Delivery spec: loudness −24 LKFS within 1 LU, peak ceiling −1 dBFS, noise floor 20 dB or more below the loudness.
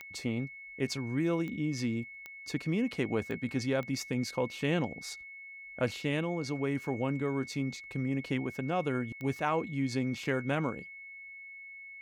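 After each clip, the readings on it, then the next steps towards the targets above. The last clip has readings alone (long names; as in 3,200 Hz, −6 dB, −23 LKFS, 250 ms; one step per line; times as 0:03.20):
number of clicks 6; interfering tone 2,200 Hz; level of the tone −45 dBFS; integrated loudness −33.5 LKFS; sample peak −16.5 dBFS; target loudness −24.0 LKFS
→ click removal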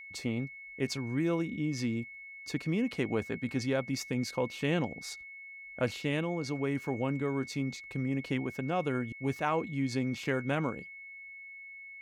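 number of clicks 0; interfering tone 2,200 Hz; level of the tone −45 dBFS
→ notch filter 2,200 Hz, Q 30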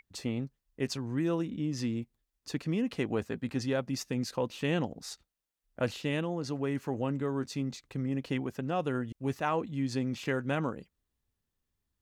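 interfering tone none found; integrated loudness −33.5 LKFS; sample peak −17.0 dBFS; target loudness −24.0 LKFS
→ level +9.5 dB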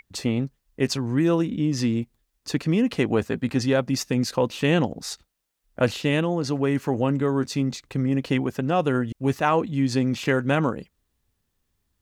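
integrated loudness −24.0 LKFS; sample peak −7.5 dBFS; background noise floor −76 dBFS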